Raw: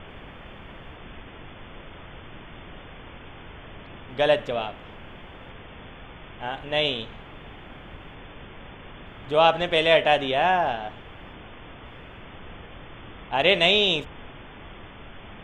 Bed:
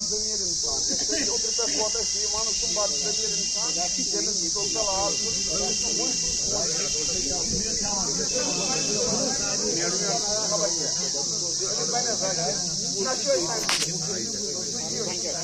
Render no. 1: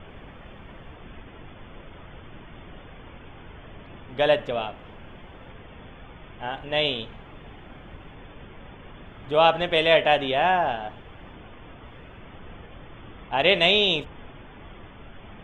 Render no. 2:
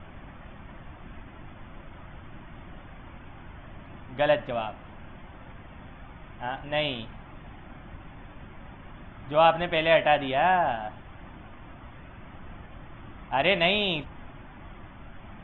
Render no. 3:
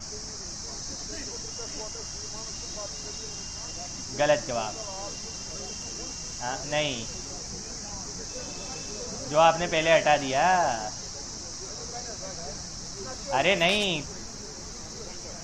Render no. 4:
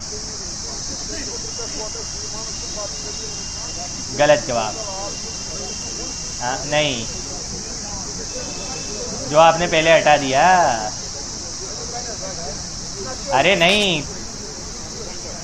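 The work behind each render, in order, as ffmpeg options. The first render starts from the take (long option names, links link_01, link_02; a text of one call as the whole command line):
ffmpeg -i in.wav -af "afftdn=noise_reduction=6:noise_floor=-44" out.wav
ffmpeg -i in.wav -af "lowpass=2400,equalizer=frequency=450:width=4.3:gain=-13.5" out.wav
ffmpeg -i in.wav -i bed.wav -filter_complex "[1:a]volume=-12dB[link_01];[0:a][link_01]amix=inputs=2:normalize=0" out.wav
ffmpeg -i in.wav -af "volume=9dB,alimiter=limit=-1dB:level=0:latency=1" out.wav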